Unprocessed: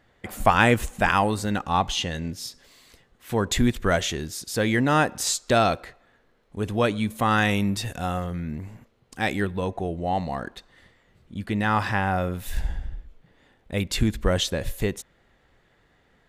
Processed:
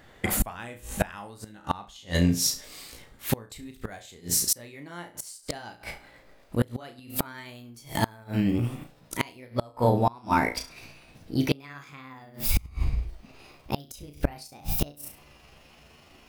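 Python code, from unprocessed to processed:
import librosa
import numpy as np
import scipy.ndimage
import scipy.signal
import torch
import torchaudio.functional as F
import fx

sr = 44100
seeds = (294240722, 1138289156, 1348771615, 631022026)

y = fx.pitch_glide(x, sr, semitones=7.0, runs='starting unshifted')
y = fx.high_shelf(y, sr, hz=8200.0, db=7.5)
y = fx.room_flutter(y, sr, wall_m=5.9, rt60_s=0.28)
y = fx.gate_flip(y, sr, shuts_db=-18.0, range_db=-29)
y = F.gain(torch.from_numpy(y), 8.0).numpy()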